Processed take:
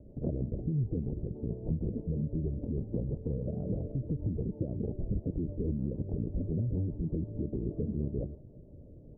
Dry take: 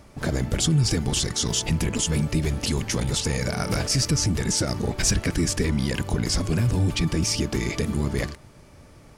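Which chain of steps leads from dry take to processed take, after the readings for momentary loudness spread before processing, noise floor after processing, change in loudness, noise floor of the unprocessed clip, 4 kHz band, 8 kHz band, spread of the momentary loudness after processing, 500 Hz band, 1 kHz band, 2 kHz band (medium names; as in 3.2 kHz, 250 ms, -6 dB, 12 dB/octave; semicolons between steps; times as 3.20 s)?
4 LU, -51 dBFS, -11.0 dB, -50 dBFS, under -40 dB, under -40 dB, 5 LU, -9.0 dB, under -25 dB, under -40 dB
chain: steep low-pass 580 Hz 36 dB/octave; compression 2.5:1, threshold -31 dBFS, peak gain reduction 9.5 dB; rotary cabinet horn 6.3 Hz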